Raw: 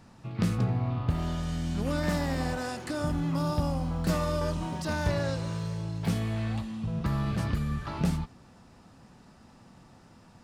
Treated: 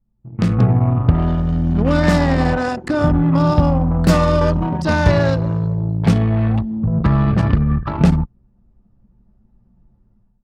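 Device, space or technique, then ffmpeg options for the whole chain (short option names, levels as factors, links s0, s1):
voice memo with heavy noise removal: -af "anlmdn=6.31,dynaudnorm=f=300:g=3:m=6.31"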